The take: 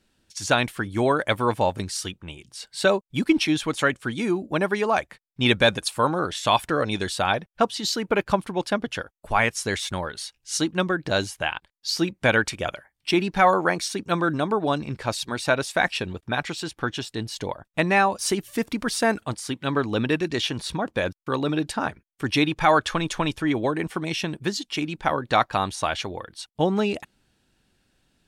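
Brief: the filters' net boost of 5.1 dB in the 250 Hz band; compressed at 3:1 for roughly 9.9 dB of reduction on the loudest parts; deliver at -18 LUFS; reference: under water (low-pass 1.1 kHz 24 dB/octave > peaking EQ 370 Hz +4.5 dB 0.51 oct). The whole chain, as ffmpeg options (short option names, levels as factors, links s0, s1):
-af "equalizer=f=250:t=o:g=4.5,acompressor=threshold=0.0562:ratio=3,lowpass=f=1100:w=0.5412,lowpass=f=1100:w=1.3066,equalizer=f=370:t=o:w=0.51:g=4.5,volume=3.55"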